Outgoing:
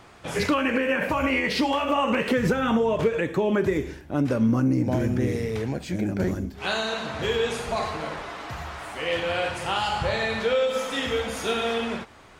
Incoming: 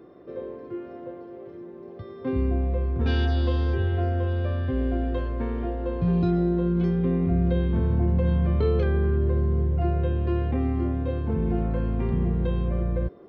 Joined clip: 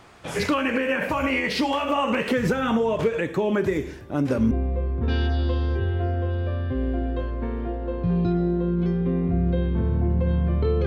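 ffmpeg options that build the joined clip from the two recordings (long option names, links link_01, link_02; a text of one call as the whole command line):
ffmpeg -i cue0.wav -i cue1.wav -filter_complex "[1:a]asplit=2[link_01][link_02];[0:a]apad=whole_dur=10.86,atrim=end=10.86,atrim=end=4.512[link_03];[link_02]atrim=start=2.488:end=8.84[link_04];[link_01]atrim=start=1.81:end=2.49,asetpts=PTS-STARTPTS,volume=-7dB,afade=type=in:duration=0.004:curve=hsin,afade=type=out:start_time=0.676:duration=0.004:curve=hsin,adelay=3830[link_05];[link_03][link_04]acrossfade=duration=0.004:curve1=hsin:curve2=hsin[link_06];[link_06][link_05]amix=inputs=2:normalize=0" out.wav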